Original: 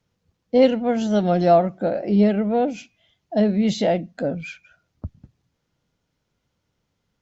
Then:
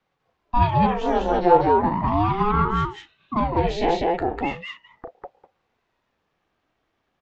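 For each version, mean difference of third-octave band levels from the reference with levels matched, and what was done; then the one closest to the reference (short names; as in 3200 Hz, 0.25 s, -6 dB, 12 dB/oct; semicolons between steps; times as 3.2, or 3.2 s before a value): 10.5 dB: three-band isolator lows -12 dB, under 350 Hz, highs -16 dB, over 3200 Hz; in parallel at +3 dB: compressor, threshold -27 dBFS, peak gain reduction 14.5 dB; on the sum: loudspeakers at several distances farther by 12 m -9 dB, 68 m -1 dB; ring modulator with a swept carrier 410 Hz, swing 60%, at 0.37 Hz; gain -1 dB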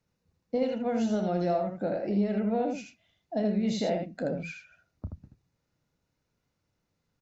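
3.5 dB: notch 3200 Hz, Q 7.6; compressor 6:1, threshold -20 dBFS, peak gain reduction 10 dB; on a send: early reflections 31 ms -11 dB, 80 ms -5 dB; on the sum: gain -6 dB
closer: second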